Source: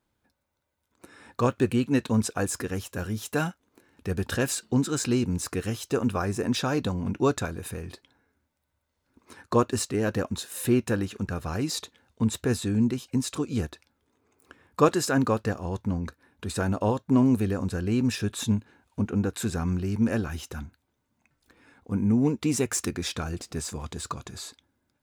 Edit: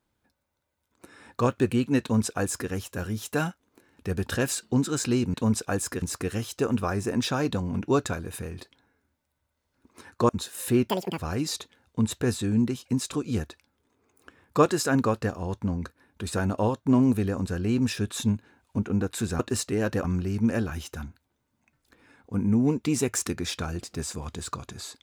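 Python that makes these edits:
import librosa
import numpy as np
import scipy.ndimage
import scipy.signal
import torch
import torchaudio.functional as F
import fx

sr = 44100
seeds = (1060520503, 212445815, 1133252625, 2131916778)

y = fx.edit(x, sr, fx.duplicate(start_s=2.02, length_s=0.68, to_s=5.34),
    fx.move(start_s=9.61, length_s=0.65, to_s=19.62),
    fx.speed_span(start_s=10.86, length_s=0.55, speed=1.88), tone=tone)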